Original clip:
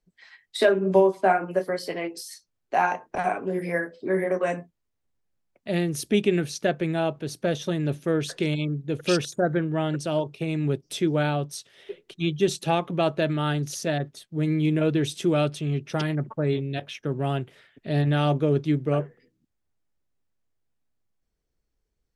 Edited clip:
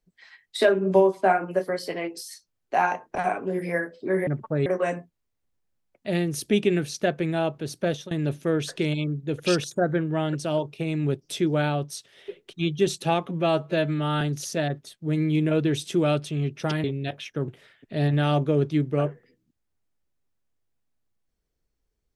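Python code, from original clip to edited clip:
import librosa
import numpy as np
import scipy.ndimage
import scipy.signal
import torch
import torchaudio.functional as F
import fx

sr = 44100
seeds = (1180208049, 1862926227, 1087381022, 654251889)

y = fx.edit(x, sr, fx.fade_out_to(start_s=7.47, length_s=0.25, curve='qsin', floor_db=-21.0),
    fx.stretch_span(start_s=12.89, length_s=0.62, factor=1.5),
    fx.move(start_s=16.14, length_s=0.39, to_s=4.27),
    fx.cut(start_s=17.17, length_s=0.25), tone=tone)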